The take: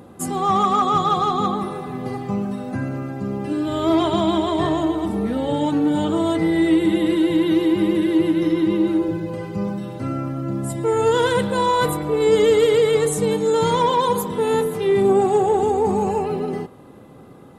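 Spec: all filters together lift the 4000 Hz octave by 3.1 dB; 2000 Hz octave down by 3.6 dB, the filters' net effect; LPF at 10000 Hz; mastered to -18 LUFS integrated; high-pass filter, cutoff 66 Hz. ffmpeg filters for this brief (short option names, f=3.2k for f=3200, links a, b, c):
-af "highpass=66,lowpass=10k,equalizer=f=2k:t=o:g=-6,equalizer=f=4k:t=o:g=6,volume=2dB"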